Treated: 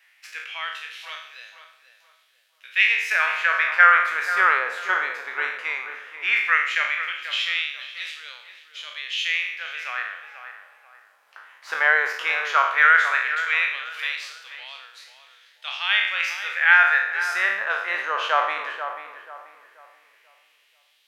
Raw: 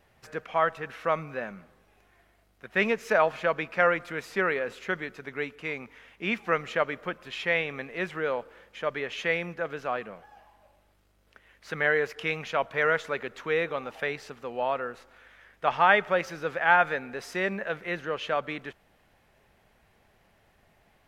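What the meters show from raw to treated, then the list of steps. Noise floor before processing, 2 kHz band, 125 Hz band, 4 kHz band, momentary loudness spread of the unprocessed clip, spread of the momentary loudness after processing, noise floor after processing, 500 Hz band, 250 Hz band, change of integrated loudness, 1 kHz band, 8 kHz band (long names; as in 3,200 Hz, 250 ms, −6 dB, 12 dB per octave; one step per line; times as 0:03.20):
−65 dBFS, +10.0 dB, below −30 dB, +11.5 dB, 13 LU, 22 LU, −62 dBFS, −9.0 dB, below −15 dB, +7.5 dB, +5.0 dB, +8.0 dB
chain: peak hold with a decay on every bin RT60 0.71 s
auto-filter high-pass sine 0.15 Hz 950–3,900 Hz
tape delay 485 ms, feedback 38%, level −8 dB, low-pass 1,600 Hz
level +3.5 dB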